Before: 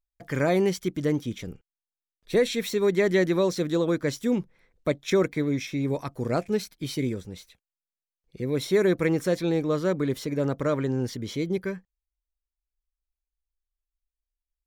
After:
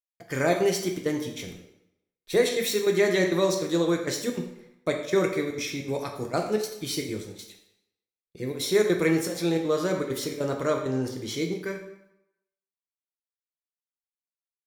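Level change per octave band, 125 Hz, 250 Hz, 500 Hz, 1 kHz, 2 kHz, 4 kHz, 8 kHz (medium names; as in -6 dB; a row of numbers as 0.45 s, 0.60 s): -4.0 dB, -2.0 dB, 0.0 dB, +2.0 dB, +1.5 dB, +3.5 dB, +6.0 dB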